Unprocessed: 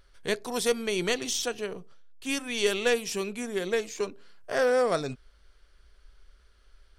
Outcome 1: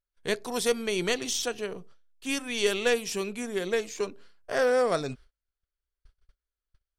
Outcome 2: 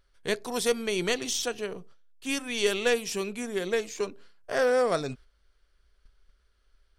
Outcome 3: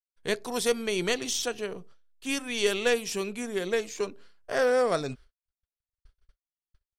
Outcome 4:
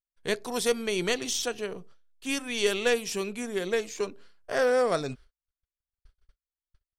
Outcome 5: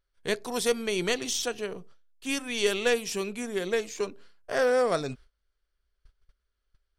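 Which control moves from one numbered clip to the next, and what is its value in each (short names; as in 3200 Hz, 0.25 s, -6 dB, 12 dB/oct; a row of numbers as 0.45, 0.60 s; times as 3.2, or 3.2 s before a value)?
gate, range: -32, -8, -59, -45, -20 dB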